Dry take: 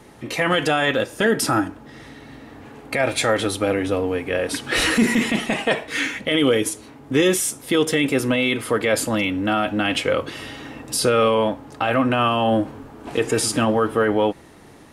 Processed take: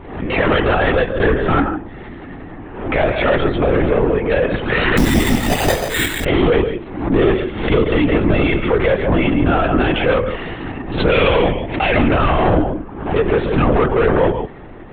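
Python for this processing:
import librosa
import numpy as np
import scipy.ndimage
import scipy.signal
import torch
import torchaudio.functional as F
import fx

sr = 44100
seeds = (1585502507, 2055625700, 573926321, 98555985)

p1 = fx.high_shelf_res(x, sr, hz=1700.0, db=7.0, q=3.0, at=(11.11, 12.07))
p2 = fx.level_steps(p1, sr, step_db=12)
p3 = p1 + (p2 * 10.0 ** (0.0 / 20.0))
p4 = fx.air_absorb(p3, sr, metres=480.0)
p5 = p4 + 10.0 ** (-11.0 / 20.0) * np.pad(p4, (int(148 * sr / 1000.0), 0))[:len(p4)]
p6 = 10.0 ** (-15.5 / 20.0) * np.tanh(p5 / 10.0 ** (-15.5 / 20.0))
p7 = fx.lpc_vocoder(p6, sr, seeds[0], excitation='whisper', order=16)
p8 = fx.resample_bad(p7, sr, factor=8, down='none', up='hold', at=(4.97, 6.25))
p9 = fx.pre_swell(p8, sr, db_per_s=72.0)
y = p9 * 10.0 ** (6.0 / 20.0)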